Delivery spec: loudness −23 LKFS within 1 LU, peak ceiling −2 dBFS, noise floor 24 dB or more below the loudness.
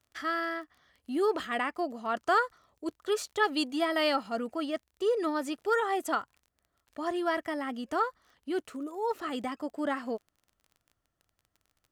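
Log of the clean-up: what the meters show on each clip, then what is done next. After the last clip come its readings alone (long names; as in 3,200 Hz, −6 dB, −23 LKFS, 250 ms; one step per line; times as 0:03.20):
crackle rate 25 per second; integrated loudness −31.5 LKFS; sample peak −14.0 dBFS; target loudness −23.0 LKFS
→ click removal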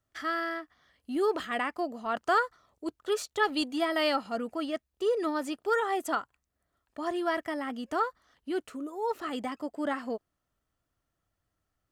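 crackle rate 0.84 per second; integrated loudness −31.5 LKFS; sample peak −14.0 dBFS; target loudness −23.0 LKFS
→ level +8.5 dB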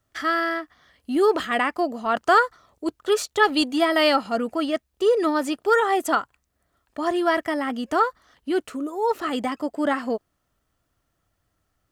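integrated loudness −23.0 LKFS; sample peak −5.5 dBFS; background noise floor −74 dBFS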